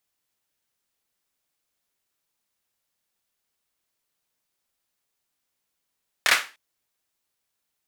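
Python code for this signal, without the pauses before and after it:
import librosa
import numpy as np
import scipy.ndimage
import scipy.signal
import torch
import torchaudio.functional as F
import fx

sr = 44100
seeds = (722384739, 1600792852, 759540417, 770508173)

y = fx.drum_clap(sr, seeds[0], length_s=0.3, bursts=3, spacing_ms=26, hz=1800.0, decay_s=0.31)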